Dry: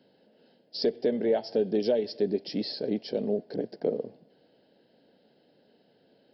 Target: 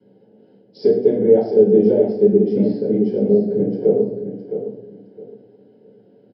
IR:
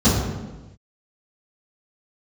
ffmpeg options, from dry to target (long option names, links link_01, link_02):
-filter_complex "[0:a]asettb=1/sr,asplit=3[link_01][link_02][link_03];[link_01]atrim=end=1.154[link_04];[link_02]atrim=start=1.15:end=3.71,asetpts=PTS-STARTPTS,afade=type=in:duration=0.004:curve=qsin,afade=type=out:start_time=2.556:duration=0.004:curve=qsin,lowpass=frequency=2300:poles=1[link_05];[link_03]atrim=start=3.706[link_06];[link_04][link_05]acrossfade=duration=0.004:curve1=hsin:curve2=qsin[link_07];[link_07][link_06]acrossfade=duration=0.004:curve1=qsin:curve2=hsin,aecho=1:1:663|1326|1989:0.335|0.0804|0.0193[link_08];[1:a]atrim=start_sample=2205,asetrate=83790,aresample=44100[link_09];[link_08][link_09]afir=irnorm=-1:irlink=0,volume=-17.5dB"